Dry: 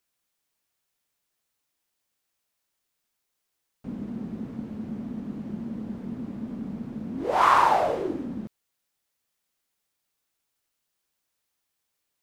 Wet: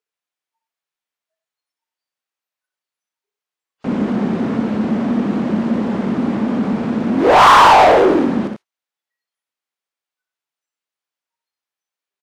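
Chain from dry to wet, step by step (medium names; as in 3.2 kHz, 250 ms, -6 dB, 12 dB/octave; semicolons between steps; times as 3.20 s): spectral noise reduction 29 dB; multi-tap echo 62/91 ms -7/-9 dB; overdrive pedal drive 27 dB, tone 2.6 kHz, clips at -5.5 dBFS; trim +4.5 dB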